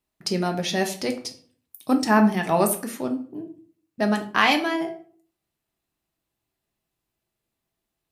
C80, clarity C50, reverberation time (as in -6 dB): 16.5 dB, 11.5 dB, 0.50 s